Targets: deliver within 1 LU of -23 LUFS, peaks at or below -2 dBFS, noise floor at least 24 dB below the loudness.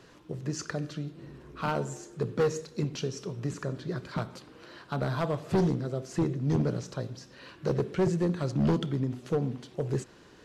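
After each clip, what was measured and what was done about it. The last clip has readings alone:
clipped 1.3%; flat tops at -20.5 dBFS; loudness -31.5 LUFS; peak -20.5 dBFS; loudness target -23.0 LUFS
-> clip repair -20.5 dBFS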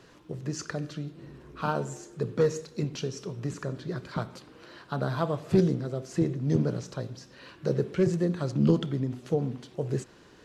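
clipped 0.0%; loudness -30.0 LUFS; peak -11.5 dBFS; loudness target -23.0 LUFS
-> gain +7 dB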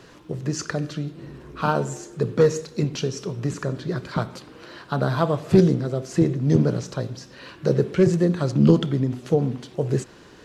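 loudness -23.0 LUFS; peak -4.5 dBFS; noise floor -48 dBFS

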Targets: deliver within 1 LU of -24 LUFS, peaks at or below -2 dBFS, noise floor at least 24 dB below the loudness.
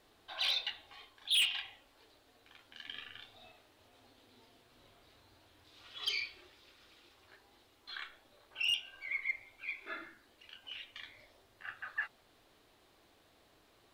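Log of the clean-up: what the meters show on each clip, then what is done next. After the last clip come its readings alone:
clipped 0.2%; flat tops at -26.0 dBFS; loudness -36.5 LUFS; peak -26.0 dBFS; loudness target -24.0 LUFS
-> clip repair -26 dBFS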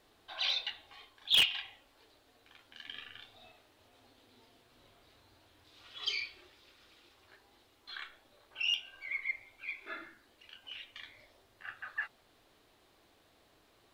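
clipped 0.0%; loudness -34.5 LUFS; peak -17.0 dBFS; loudness target -24.0 LUFS
-> gain +10.5 dB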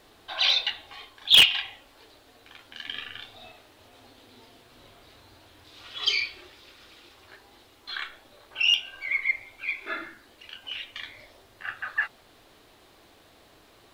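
loudness -24.0 LUFS; peak -6.5 dBFS; noise floor -57 dBFS

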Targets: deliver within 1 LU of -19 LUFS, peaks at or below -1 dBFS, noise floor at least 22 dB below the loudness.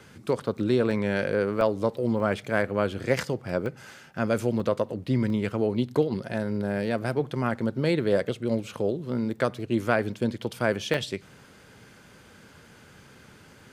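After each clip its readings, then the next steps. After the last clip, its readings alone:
dropouts 7; longest dropout 1.2 ms; loudness -27.0 LUFS; peak -7.0 dBFS; loudness target -19.0 LUFS
-> interpolate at 0.91/1.61/2.2/3.66/4.6/5.3/10.94, 1.2 ms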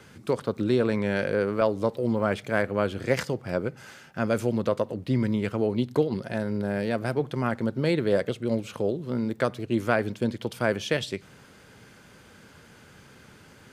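dropouts 0; loudness -27.0 LUFS; peak -7.0 dBFS; loudness target -19.0 LUFS
-> gain +8 dB; limiter -1 dBFS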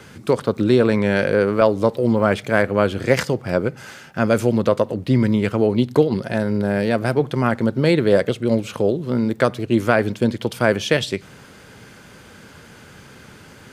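loudness -19.5 LUFS; peak -1.0 dBFS; noise floor -44 dBFS

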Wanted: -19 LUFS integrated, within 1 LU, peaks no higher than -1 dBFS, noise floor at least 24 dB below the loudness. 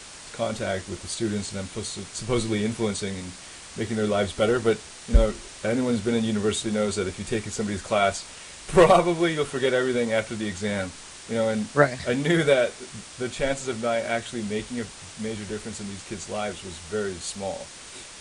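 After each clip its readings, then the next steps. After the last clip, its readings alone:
noise floor -43 dBFS; noise floor target -50 dBFS; loudness -26.0 LUFS; peak -3.0 dBFS; loudness target -19.0 LUFS
-> denoiser 7 dB, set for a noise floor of -43 dBFS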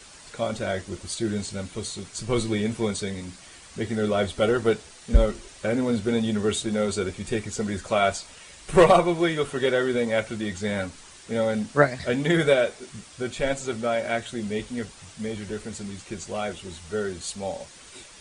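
noise floor -48 dBFS; noise floor target -50 dBFS
-> denoiser 6 dB, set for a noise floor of -48 dBFS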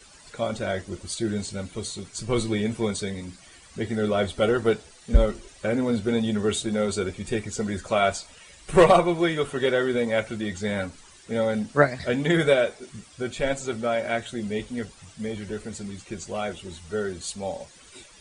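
noise floor -51 dBFS; loudness -26.0 LUFS; peak -3.0 dBFS; loudness target -19.0 LUFS
-> gain +7 dB; limiter -1 dBFS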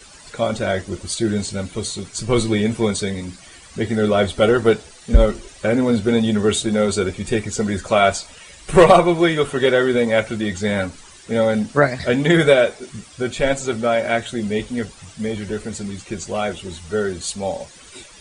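loudness -19.5 LUFS; peak -1.0 dBFS; noise floor -44 dBFS

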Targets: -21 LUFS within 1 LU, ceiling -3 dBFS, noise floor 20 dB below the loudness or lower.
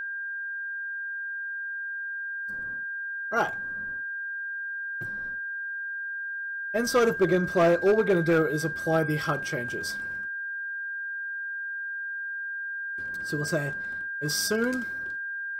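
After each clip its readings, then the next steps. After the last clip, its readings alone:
clipped 0.5%; flat tops at -16.0 dBFS; steady tone 1600 Hz; tone level -31 dBFS; loudness -28.5 LUFS; peak -16.0 dBFS; loudness target -21.0 LUFS
-> clip repair -16 dBFS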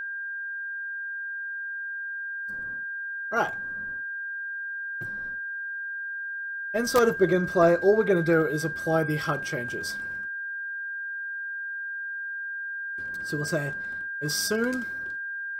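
clipped 0.0%; steady tone 1600 Hz; tone level -31 dBFS
-> notch 1600 Hz, Q 30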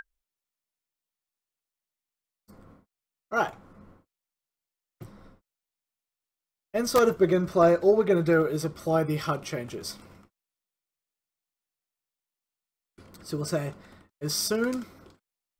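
steady tone none; loudness -26.0 LUFS; peak -6.5 dBFS; loudness target -21.0 LUFS
-> gain +5 dB; limiter -3 dBFS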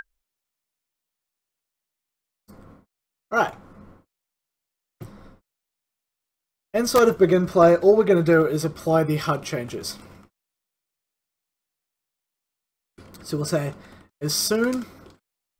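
loudness -21.0 LUFS; peak -3.0 dBFS; noise floor -85 dBFS

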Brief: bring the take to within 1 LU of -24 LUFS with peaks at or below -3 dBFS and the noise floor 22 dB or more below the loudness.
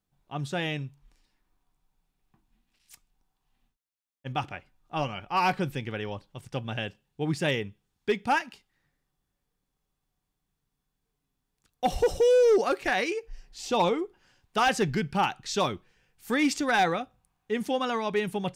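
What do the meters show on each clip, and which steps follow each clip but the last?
clipped 0.5%; flat tops at -16.5 dBFS; loudness -28.0 LUFS; peak -16.5 dBFS; loudness target -24.0 LUFS
-> clip repair -16.5 dBFS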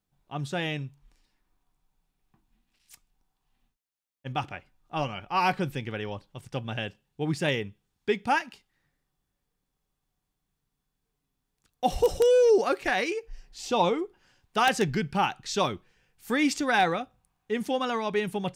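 clipped 0.0%; loudness -27.5 LUFS; peak -7.5 dBFS; loudness target -24.0 LUFS
-> gain +3.5 dB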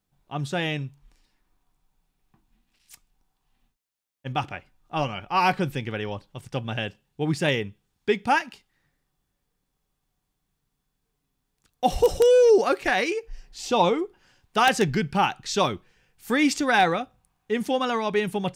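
loudness -24.0 LUFS; peak -4.0 dBFS; noise floor -79 dBFS

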